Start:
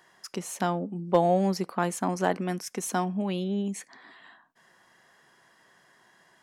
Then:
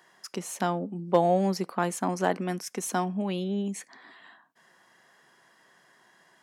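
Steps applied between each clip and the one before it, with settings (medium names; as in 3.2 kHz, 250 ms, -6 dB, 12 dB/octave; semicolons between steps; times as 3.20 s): high-pass 130 Hz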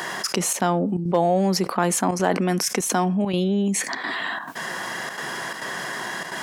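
trance gate "xxxxxx.xxxx.x" 171 bpm -12 dB; level flattener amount 70%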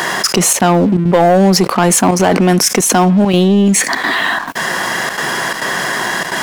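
waveshaping leveller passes 3; trim +1.5 dB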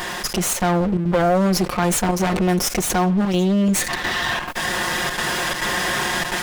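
comb filter that takes the minimum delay 5.6 ms; level rider; trim -9 dB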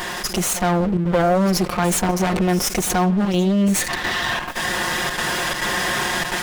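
pre-echo 76 ms -16 dB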